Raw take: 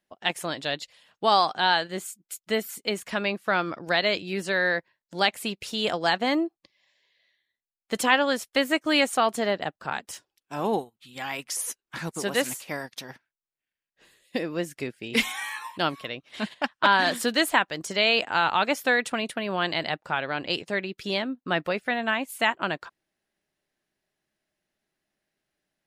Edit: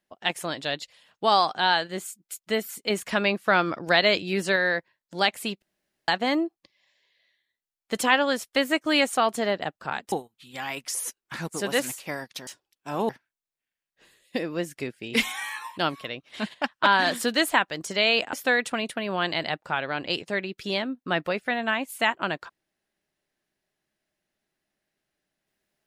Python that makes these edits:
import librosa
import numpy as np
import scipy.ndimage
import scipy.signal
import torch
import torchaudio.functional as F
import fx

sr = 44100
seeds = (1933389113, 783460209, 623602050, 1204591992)

y = fx.edit(x, sr, fx.clip_gain(start_s=2.9, length_s=1.66, db=3.5),
    fx.room_tone_fill(start_s=5.62, length_s=0.46),
    fx.move(start_s=10.12, length_s=0.62, to_s=13.09),
    fx.cut(start_s=18.33, length_s=0.4), tone=tone)